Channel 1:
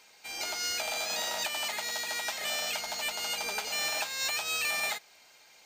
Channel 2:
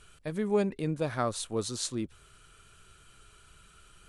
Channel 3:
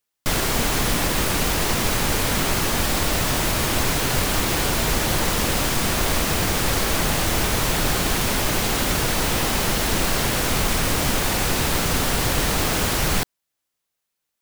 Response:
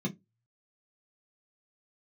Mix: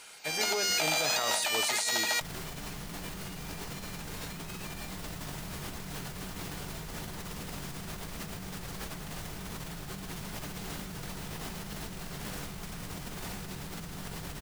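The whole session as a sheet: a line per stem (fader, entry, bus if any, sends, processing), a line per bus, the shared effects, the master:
−5.0 dB, 0.00 s, no send, no processing
−5.0 dB, 0.00 s, send −23.5 dB, high-pass filter 1,200 Hz 6 dB per octave; high-shelf EQ 7,600 Hz +8.5 dB
−6.0 dB, 1.95 s, send −14 dB, no processing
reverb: on, RT60 0.15 s, pre-delay 3 ms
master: compressor whose output falls as the input rises −38 dBFS, ratio −1

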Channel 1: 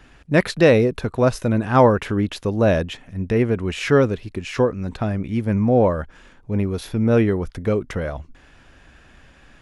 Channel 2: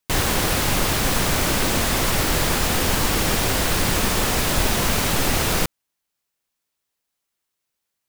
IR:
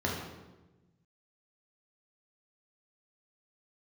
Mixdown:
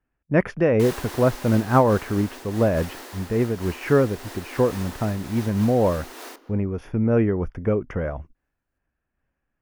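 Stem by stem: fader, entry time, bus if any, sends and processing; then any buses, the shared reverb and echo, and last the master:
+1.0 dB, 0.00 s, no send, noise gate −37 dBFS, range −27 dB; moving average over 11 samples
−5.0 dB, 0.70 s, send −23 dB, Chebyshev high-pass with heavy ripple 240 Hz, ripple 3 dB; automatic ducking −10 dB, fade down 1.80 s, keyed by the first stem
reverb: on, RT60 1.1 s, pre-delay 3 ms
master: amplitude modulation by smooth noise, depth 60%

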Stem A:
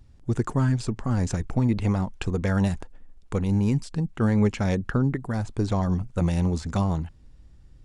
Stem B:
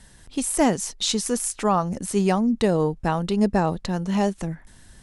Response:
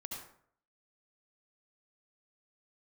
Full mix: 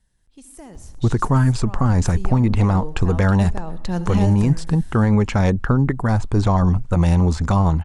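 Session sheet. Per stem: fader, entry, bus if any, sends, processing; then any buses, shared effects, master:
+2.0 dB, 0.75 s, no send, parametric band 1,000 Hz +7 dB 1.3 octaves
0:01.70 −23.5 dB → 0:02.49 −15.5 dB → 0:03.67 −15.5 dB → 0:03.97 −4 dB, 0.00 s, send −7.5 dB, brickwall limiter −13.5 dBFS, peak gain reduction 6.5 dB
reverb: on, RT60 0.60 s, pre-delay 63 ms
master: low-shelf EQ 98 Hz +9.5 dB; automatic gain control gain up to 5 dB; brickwall limiter −8 dBFS, peak gain reduction 5 dB

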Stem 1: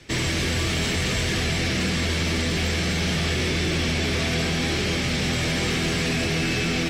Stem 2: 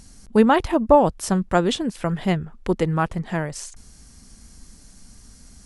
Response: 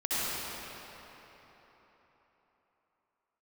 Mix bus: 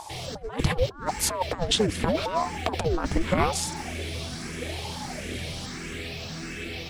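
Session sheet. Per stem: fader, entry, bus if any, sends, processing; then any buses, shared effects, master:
−15.5 dB, 0.00 s, send −18 dB, noise that follows the level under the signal 28 dB; frequency shifter mixed with the dry sound +1.5 Hz
+2.0 dB, 0.00 s, no send, ring modulator whose carrier an LFO sweeps 490 Hz, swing 80%, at 0.81 Hz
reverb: on, RT60 4.1 s, pre-delay 58 ms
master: parametric band 4,200 Hz +2 dB 0.77 octaves; compressor whose output falls as the input rises −25 dBFS, ratio −0.5; phase shifter 1.5 Hz, delay 4 ms, feedback 25%

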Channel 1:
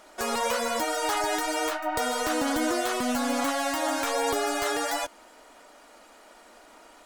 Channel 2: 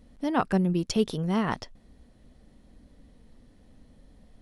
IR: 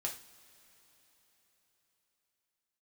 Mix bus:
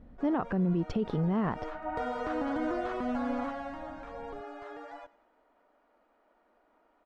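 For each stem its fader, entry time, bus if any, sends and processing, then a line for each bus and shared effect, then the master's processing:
0:01.29 −17 dB → 0:01.94 −4.5 dB → 0:03.32 −4.5 dB → 0:03.95 −14.5 dB, 0.00 s, no send, echo send −20 dB, no processing
+2.0 dB, 0.00 s, no send, no echo send, no processing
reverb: not used
echo: repeating echo 97 ms, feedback 49%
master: Bessel low-pass filter 1,300 Hz, order 2; brickwall limiter −21.5 dBFS, peak gain reduction 10.5 dB

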